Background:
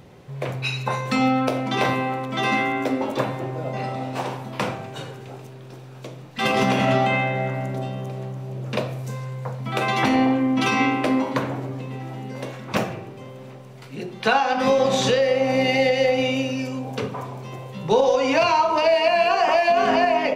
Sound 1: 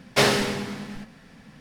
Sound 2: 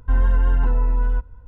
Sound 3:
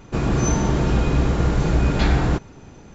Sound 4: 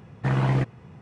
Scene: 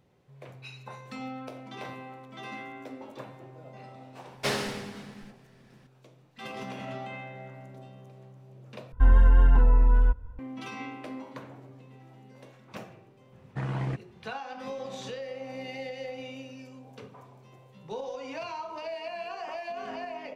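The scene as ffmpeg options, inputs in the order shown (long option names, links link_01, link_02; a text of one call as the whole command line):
ffmpeg -i bed.wav -i cue0.wav -i cue1.wav -i cue2.wav -i cue3.wav -filter_complex "[0:a]volume=-19dB,asplit=2[link_01][link_02];[link_01]atrim=end=8.924[link_03];[2:a]atrim=end=1.47,asetpts=PTS-STARTPTS,volume=-0.5dB[link_04];[link_02]atrim=start=10.386[link_05];[1:a]atrim=end=1.6,asetpts=PTS-STARTPTS,volume=-10dB,afade=type=in:duration=0.004:curve=hsin,afade=type=out:start_time=1.596:duration=0.004:curve=hsin,adelay=4270[link_06];[4:a]atrim=end=1.01,asetpts=PTS-STARTPTS,volume=-9dB,afade=type=in:duration=0.004:curve=hsin,afade=type=out:start_time=1.006:duration=0.004:curve=hsin,adelay=587412S[link_07];[link_03][link_04]acrossfade=duration=0.004:curve1=hsin:curve2=hsin[link_08];[link_08][link_05]acrossfade=duration=0.004:curve1=hsin:curve2=hsin[link_09];[link_09][link_06][link_07]amix=inputs=3:normalize=0" out.wav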